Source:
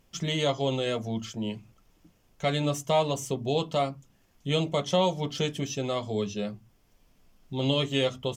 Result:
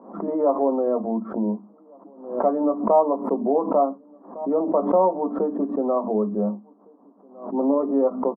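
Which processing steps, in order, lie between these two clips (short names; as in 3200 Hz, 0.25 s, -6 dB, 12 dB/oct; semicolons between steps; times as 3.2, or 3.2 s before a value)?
elliptic low-pass 1100 Hz, stop band 60 dB; in parallel at +2 dB: compressor, threshold -34 dBFS, peak gain reduction 13.5 dB; on the sum: rippled Chebyshev high-pass 200 Hz, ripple 3 dB; outdoor echo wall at 250 m, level -28 dB; backwards sustainer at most 100 dB/s; gain +6 dB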